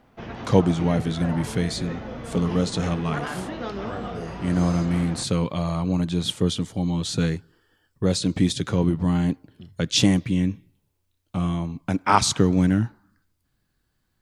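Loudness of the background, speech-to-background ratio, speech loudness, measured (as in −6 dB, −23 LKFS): −34.5 LKFS, 11.0 dB, −23.5 LKFS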